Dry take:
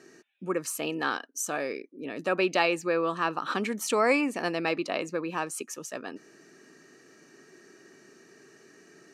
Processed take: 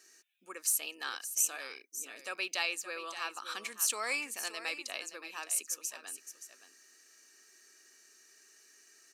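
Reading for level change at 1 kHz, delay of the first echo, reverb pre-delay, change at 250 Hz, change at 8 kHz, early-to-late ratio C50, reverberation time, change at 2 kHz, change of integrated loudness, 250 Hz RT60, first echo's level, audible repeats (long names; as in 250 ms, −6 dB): −12.5 dB, 572 ms, no reverb audible, −23.0 dB, +4.5 dB, no reverb audible, no reverb audible, −6.5 dB, −5.5 dB, no reverb audible, −11.5 dB, 1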